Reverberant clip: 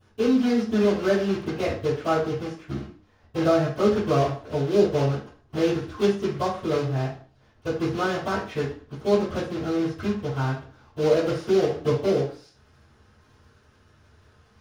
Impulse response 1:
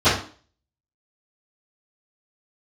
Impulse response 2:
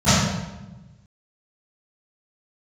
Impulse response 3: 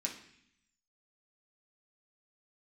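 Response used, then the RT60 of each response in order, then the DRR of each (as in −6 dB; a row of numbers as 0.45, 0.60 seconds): 1; 0.40, 1.1, 0.65 seconds; −21.0, −22.5, −2.0 decibels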